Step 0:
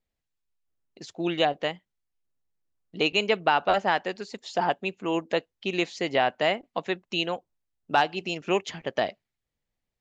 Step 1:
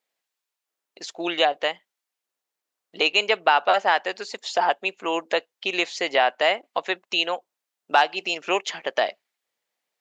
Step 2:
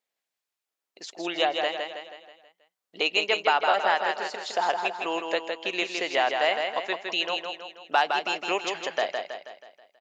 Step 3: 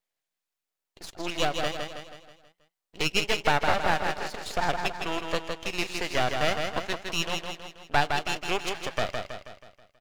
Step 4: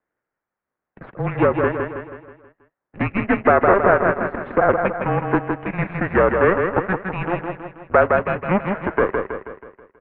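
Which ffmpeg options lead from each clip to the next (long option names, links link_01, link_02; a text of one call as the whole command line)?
ffmpeg -i in.wav -filter_complex "[0:a]highpass=550,asplit=2[link_01][link_02];[link_02]acompressor=threshold=-33dB:ratio=6,volume=-2.5dB[link_03];[link_01][link_03]amix=inputs=2:normalize=0,volume=3.5dB" out.wav
ffmpeg -i in.wav -af "aecho=1:1:161|322|483|644|805|966:0.562|0.276|0.135|0.0662|0.0324|0.0159,volume=-4.5dB" out.wav
ffmpeg -i in.wav -af "aeval=exprs='max(val(0),0)':channel_layout=same,volume=2.5dB" out.wav
ffmpeg -i in.wav -af "apsyclip=12dB,highpass=frequency=220:width_type=q:width=0.5412,highpass=frequency=220:width_type=q:width=1.307,lowpass=frequency=2000:width_type=q:width=0.5176,lowpass=frequency=2000:width_type=q:width=0.7071,lowpass=frequency=2000:width_type=q:width=1.932,afreqshift=-190" out.wav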